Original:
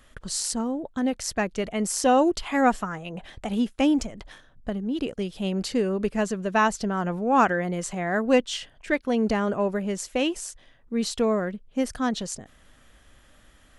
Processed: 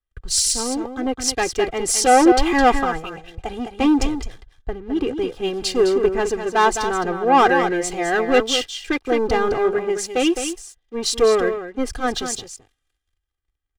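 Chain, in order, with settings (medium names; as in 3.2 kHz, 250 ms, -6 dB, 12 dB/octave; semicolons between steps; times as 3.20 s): waveshaping leveller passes 3; treble shelf 9.2 kHz -7.5 dB; comb 2.5 ms, depth 80%; delay 212 ms -6.5 dB; three bands expanded up and down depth 70%; trim -4.5 dB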